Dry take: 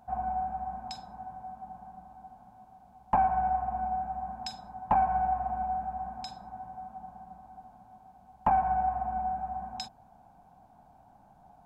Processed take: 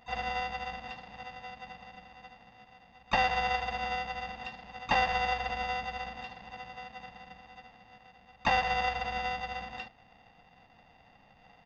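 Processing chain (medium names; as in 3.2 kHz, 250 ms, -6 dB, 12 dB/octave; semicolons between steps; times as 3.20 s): sorted samples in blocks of 16 samples; resampled via 11.025 kHz; harmony voices -7 st -10 dB, +5 st -12 dB; trim -2.5 dB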